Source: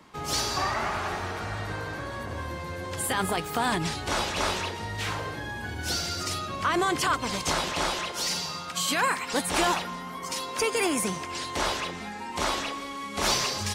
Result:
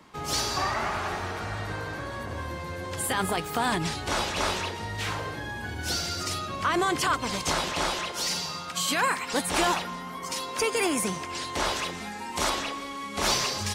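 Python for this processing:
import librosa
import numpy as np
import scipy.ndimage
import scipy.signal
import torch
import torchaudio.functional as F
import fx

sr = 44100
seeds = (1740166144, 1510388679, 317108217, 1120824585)

y = fx.high_shelf(x, sr, hz=6200.0, db=8.0, at=(11.76, 12.5))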